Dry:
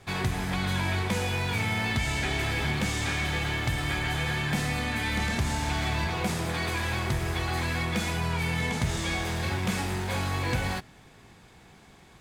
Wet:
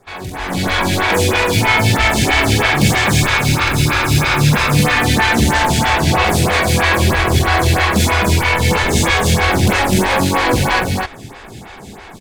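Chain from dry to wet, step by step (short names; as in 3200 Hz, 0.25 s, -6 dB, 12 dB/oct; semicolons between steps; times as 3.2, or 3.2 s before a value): 3.22–4.73 minimum comb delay 0.8 ms; overloaded stage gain 29 dB; AGC gain up to 14.5 dB; on a send: loudspeakers at several distances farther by 16 m -4 dB, 88 m -2 dB; on the sum: photocell phaser 3.1 Hz; gain +5 dB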